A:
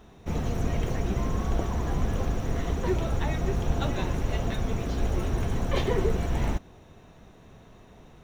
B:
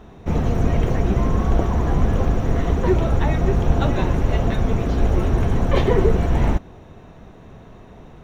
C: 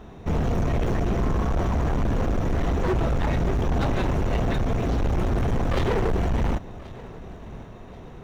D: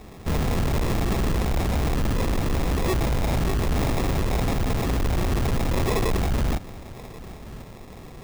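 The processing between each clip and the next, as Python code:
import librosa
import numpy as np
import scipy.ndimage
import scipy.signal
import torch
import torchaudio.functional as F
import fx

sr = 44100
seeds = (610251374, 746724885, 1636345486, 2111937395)

y1 = fx.high_shelf(x, sr, hz=3100.0, db=-10.5)
y1 = y1 * librosa.db_to_amplitude(9.0)
y2 = np.clip(10.0 ** (20.0 / 20.0) * y1, -1.0, 1.0) / 10.0 ** (20.0 / 20.0)
y2 = fx.echo_feedback(y2, sr, ms=1082, feedback_pct=41, wet_db=-19.5)
y3 = fx.sample_hold(y2, sr, seeds[0], rate_hz=1500.0, jitter_pct=0)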